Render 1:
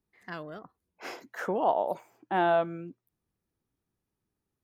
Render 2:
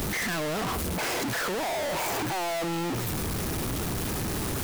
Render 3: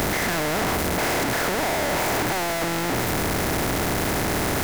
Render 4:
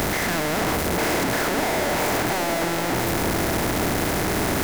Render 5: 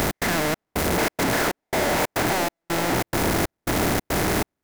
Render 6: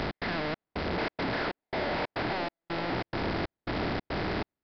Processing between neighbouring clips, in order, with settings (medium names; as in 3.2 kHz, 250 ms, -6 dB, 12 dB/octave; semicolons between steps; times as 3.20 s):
one-bit comparator; trim +4 dB
spectral levelling over time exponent 0.4
repeats whose band climbs or falls 298 ms, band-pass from 260 Hz, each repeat 0.7 oct, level -2.5 dB
trance gate "x.xxx..xx" 139 bpm -60 dB; trim +1 dB
resampled via 11.025 kHz; trim -8.5 dB